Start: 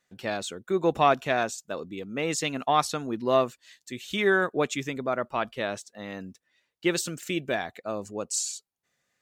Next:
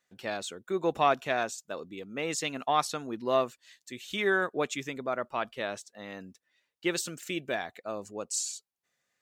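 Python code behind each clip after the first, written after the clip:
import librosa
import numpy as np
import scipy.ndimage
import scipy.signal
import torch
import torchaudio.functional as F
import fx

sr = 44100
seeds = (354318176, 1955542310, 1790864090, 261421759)

y = fx.low_shelf(x, sr, hz=240.0, db=-6.0)
y = y * 10.0 ** (-3.0 / 20.0)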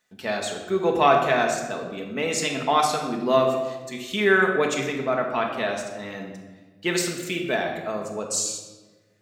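y = fx.room_shoebox(x, sr, seeds[0], volume_m3=1000.0, walls='mixed', distance_m=1.5)
y = y * 10.0 ** (5.0 / 20.0)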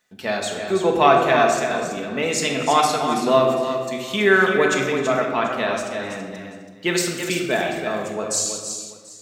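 y = fx.echo_multitap(x, sr, ms=(258, 329, 737), db=(-20.0, -7.5, -20.0))
y = y * 10.0 ** (3.0 / 20.0)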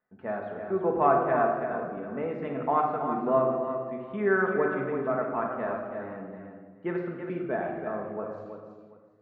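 y = scipy.signal.sosfilt(scipy.signal.butter(4, 1500.0, 'lowpass', fs=sr, output='sos'), x)
y = y * 10.0 ** (-7.5 / 20.0)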